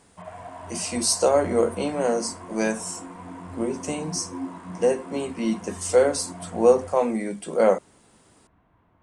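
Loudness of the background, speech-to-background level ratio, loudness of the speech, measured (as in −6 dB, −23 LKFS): −39.0 LKFS, 15.0 dB, −24.0 LKFS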